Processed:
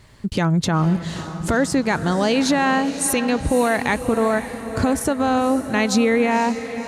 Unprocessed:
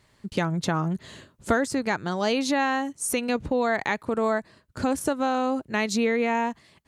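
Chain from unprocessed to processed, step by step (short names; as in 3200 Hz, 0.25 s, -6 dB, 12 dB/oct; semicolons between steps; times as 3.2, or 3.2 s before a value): low shelf 130 Hz +9 dB; in parallel at -2 dB: compressor, threshold -34 dBFS, peak gain reduction 17.5 dB; on the sum: limiter -13.5 dBFS, peak gain reduction 7.5 dB; diffused feedback echo 0.529 s, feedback 52%, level -11 dB; gain +4.5 dB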